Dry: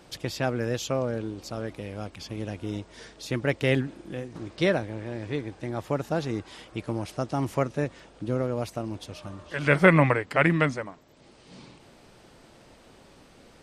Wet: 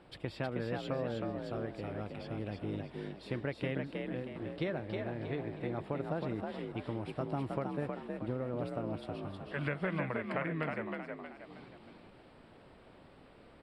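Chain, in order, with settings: compression 12:1, threshold -26 dBFS, peak gain reduction 15.5 dB; boxcar filter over 7 samples; frequency-shifting echo 316 ms, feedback 40%, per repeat +46 Hz, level -4 dB; trim -5.5 dB

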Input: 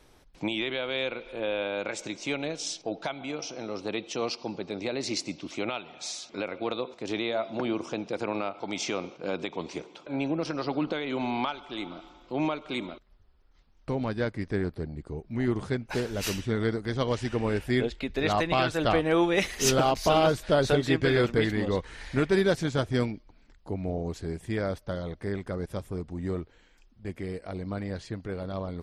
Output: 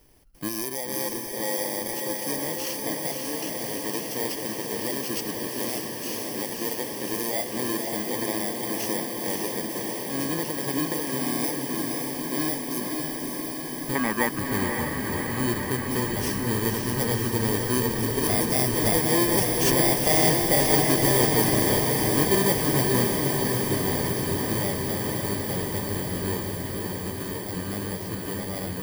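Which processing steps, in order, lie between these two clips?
bit-reversed sample order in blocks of 32 samples; 13.95–14.39 s: graphic EQ 125/250/1000/2000/4000 Hz -12/+8/+9/+12/-4 dB; echo that smears into a reverb 560 ms, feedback 79%, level -3 dB

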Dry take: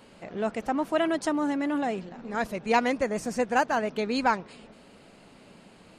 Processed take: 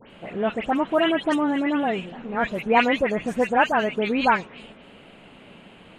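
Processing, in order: resonant high shelf 3.9 kHz -7.5 dB, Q 3; phase dispersion highs, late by 108 ms, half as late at 2.8 kHz; trim +4.5 dB

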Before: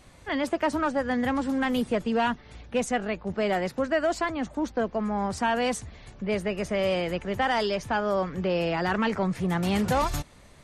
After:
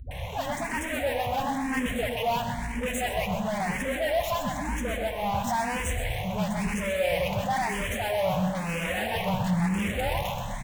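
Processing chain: low-pass 6.1 kHz; in parallel at -10 dB: fuzz box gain 51 dB, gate -56 dBFS; on the sum: static phaser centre 1.3 kHz, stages 6; phase dispersion highs, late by 111 ms, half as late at 380 Hz; saturation -21.5 dBFS, distortion -12 dB; feedback delay 128 ms, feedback 55%, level -8 dB; on a send at -8 dB: reverberation RT60 2.2 s, pre-delay 3 ms; on the sum: barber-pole phaser +1 Hz

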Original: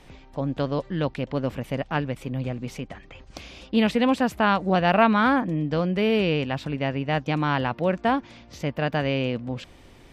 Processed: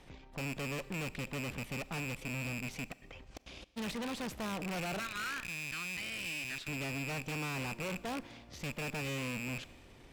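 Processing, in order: rattle on loud lows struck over -36 dBFS, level -13 dBFS; 4.99–6.68 s: steep high-pass 1.3 kHz 36 dB/octave; valve stage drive 34 dB, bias 0.7; 2.89–3.76 s: trance gate ".xxxx.xx..x" 169 bpm -60 dB; Schroeder reverb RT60 1.5 s, combs from 29 ms, DRR 18 dB; trim -2.5 dB

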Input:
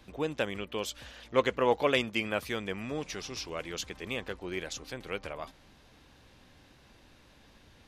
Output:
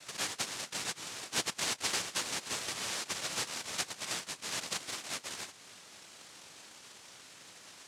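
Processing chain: compression 2:1, threshold -43 dBFS, peak gain reduction 13 dB; peaking EQ 550 Hz -7.5 dB 2.6 oct; noise-vocoded speech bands 1; trim +8.5 dB

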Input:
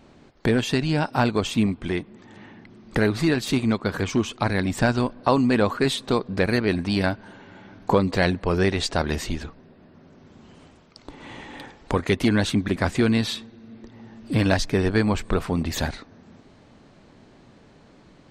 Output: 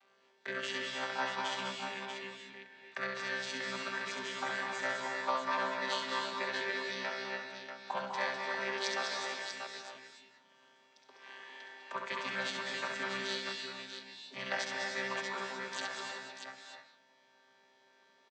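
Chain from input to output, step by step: vocoder on a held chord bare fifth, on C3; high-pass 1.4 kHz 12 dB/octave; multi-tap echo 67/202/639 ms -4.5/-6.5/-7 dB; gated-style reverb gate 330 ms rising, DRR 2.5 dB; trim +2.5 dB

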